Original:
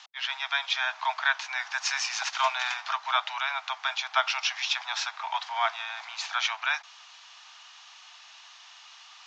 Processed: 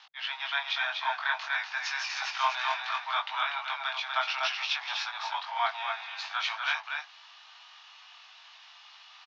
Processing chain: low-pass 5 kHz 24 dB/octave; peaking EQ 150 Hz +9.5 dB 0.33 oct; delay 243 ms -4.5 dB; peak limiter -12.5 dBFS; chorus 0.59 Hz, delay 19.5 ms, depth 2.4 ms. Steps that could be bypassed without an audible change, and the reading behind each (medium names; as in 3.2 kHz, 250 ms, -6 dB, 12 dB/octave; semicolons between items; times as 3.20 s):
peaking EQ 150 Hz: input has nothing below 570 Hz